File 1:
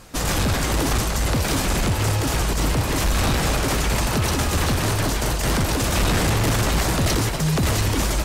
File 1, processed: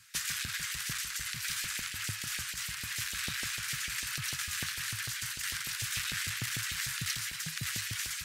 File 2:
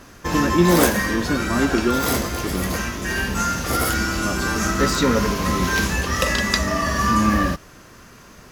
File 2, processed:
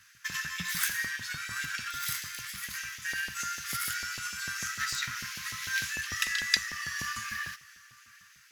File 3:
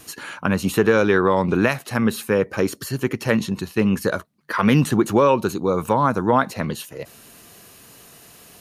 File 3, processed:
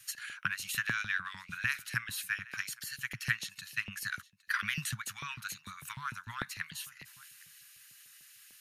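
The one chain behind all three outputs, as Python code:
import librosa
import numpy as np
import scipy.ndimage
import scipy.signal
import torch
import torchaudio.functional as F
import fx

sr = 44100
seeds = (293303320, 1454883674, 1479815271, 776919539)

p1 = x + fx.echo_single(x, sr, ms=812, db=-23.0, dry=0)
p2 = fx.transient(p1, sr, attack_db=7, sustain_db=3)
p3 = scipy.signal.sosfilt(scipy.signal.cheby1(3, 1.0, [120.0, 1600.0], 'bandstop', fs=sr, output='sos'), p2)
p4 = fx.low_shelf(p3, sr, hz=190.0, db=9.5)
p5 = fx.filter_lfo_highpass(p4, sr, shape='saw_up', hz=6.7, low_hz=200.0, high_hz=2800.0, q=1.1)
y = F.gain(torch.from_numpy(p5), -9.0).numpy()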